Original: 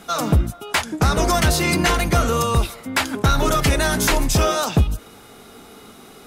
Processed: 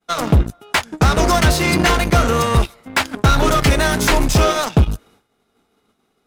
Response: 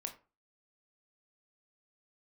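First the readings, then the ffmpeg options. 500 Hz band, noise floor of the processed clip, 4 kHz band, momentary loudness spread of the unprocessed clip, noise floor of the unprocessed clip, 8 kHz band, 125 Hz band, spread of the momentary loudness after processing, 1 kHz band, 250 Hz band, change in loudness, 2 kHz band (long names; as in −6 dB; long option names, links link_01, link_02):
+3.0 dB, −67 dBFS, +2.5 dB, 5 LU, −44 dBFS, 0.0 dB, +3.5 dB, 6 LU, +3.5 dB, +3.0 dB, +3.0 dB, +3.5 dB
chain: -af "aeval=exprs='0.355*(cos(1*acos(clip(val(0)/0.355,-1,1)))-cos(1*PI/2))+0.0398*(cos(7*acos(clip(val(0)/0.355,-1,1)))-cos(7*PI/2))':channel_layout=same,agate=range=-33dB:threshold=-47dB:ratio=3:detection=peak,highshelf=frequency=7100:gain=-7,volume=3.5dB"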